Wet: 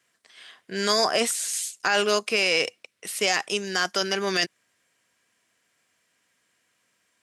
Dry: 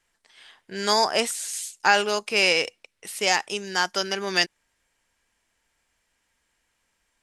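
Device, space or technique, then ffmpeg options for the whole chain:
PA system with an anti-feedback notch: -af "highpass=f=110:w=0.5412,highpass=f=110:w=1.3066,asuperstop=centerf=870:order=4:qfactor=6.7,alimiter=limit=-14dB:level=0:latency=1:release=17,volume=3dB"

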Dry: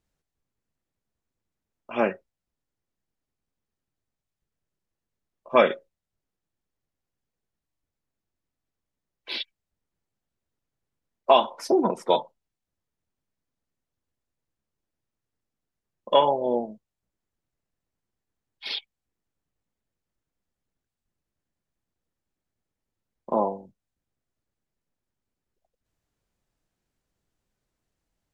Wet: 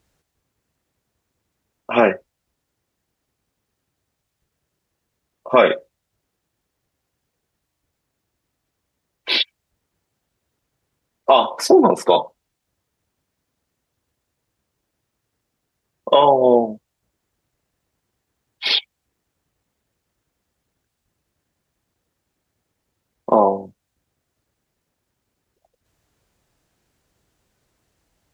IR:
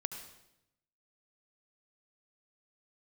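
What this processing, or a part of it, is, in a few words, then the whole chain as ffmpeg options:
mastering chain: -af "highpass=47,equalizer=f=200:t=o:w=0.76:g=-3,acompressor=threshold=-22dB:ratio=2,alimiter=level_in=14.5dB:limit=-1dB:release=50:level=0:latency=1,volume=-1dB"

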